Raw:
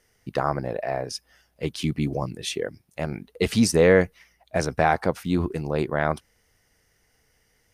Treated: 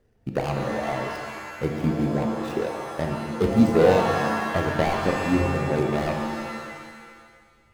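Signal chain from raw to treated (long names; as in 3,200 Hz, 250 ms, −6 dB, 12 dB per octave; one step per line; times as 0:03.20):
running median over 41 samples
in parallel at 0 dB: downward compressor, threshold −35 dBFS, peak gain reduction 19 dB
on the sum: reverb reduction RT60 1.5 s
reverb with rising layers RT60 1.7 s, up +7 semitones, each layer −2 dB, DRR 3 dB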